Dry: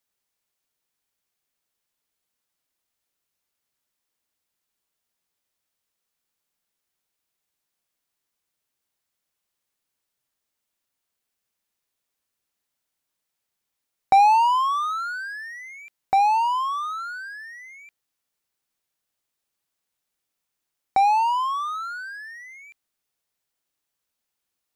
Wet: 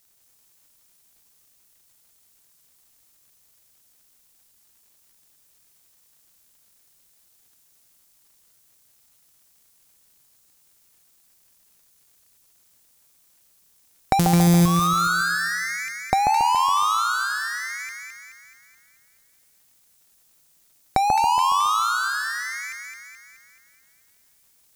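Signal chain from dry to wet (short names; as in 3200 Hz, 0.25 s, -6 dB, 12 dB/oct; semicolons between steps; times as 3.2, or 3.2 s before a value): 14.19–14.66 sample sorter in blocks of 256 samples; tone controls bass +11 dB, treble +14 dB; compressor 10:1, threshold -24 dBFS, peak gain reduction 18.5 dB; split-band echo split 1400 Hz, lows 0.139 s, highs 0.214 s, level -4 dB; crackle 310/s -61 dBFS; gain +6.5 dB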